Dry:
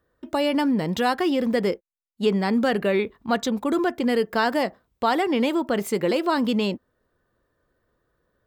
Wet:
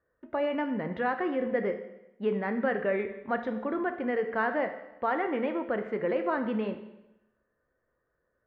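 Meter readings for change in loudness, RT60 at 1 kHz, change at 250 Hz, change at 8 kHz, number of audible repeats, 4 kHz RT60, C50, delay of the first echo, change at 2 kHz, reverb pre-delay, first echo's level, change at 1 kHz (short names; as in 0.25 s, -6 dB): -7.0 dB, 0.95 s, -9.5 dB, under -40 dB, none, 0.85 s, 9.5 dB, none, -4.5 dB, 14 ms, none, -6.5 dB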